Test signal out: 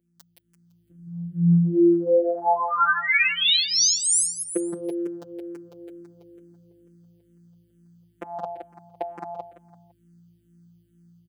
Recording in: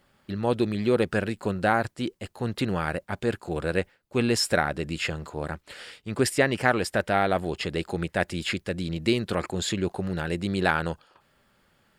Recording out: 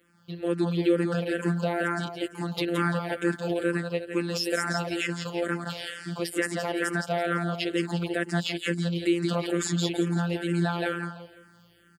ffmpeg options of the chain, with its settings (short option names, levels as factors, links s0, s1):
-filter_complex "[0:a]asplit=2[s0][s1];[s1]acompressor=threshold=0.0141:ratio=6,volume=0.708[s2];[s0][s2]amix=inputs=2:normalize=0,lowshelf=f=160:t=q:w=1.5:g=-10.5,aeval=exprs='val(0)+0.00126*(sin(2*PI*60*n/s)+sin(2*PI*2*60*n/s)/2+sin(2*PI*3*60*n/s)/3+sin(2*PI*4*60*n/s)/4+sin(2*PI*5*60*n/s)/5)':c=same,dynaudnorm=f=430:g=3:m=3.35,afftfilt=real='hypot(re,im)*cos(PI*b)':imag='0':win_size=1024:overlap=0.75,highpass=f=58:w=0.5412,highpass=f=58:w=1.3066,equalizer=f=940:t=o:w=0.65:g=-2.5,asplit=2[s3][s4];[s4]aecho=0:1:169|338|507|676:0.596|0.203|0.0689|0.0234[s5];[s3][s5]amix=inputs=2:normalize=0,alimiter=limit=0.316:level=0:latency=1:release=175,asplit=2[s6][s7];[s7]afreqshift=-2.2[s8];[s6][s8]amix=inputs=2:normalize=1"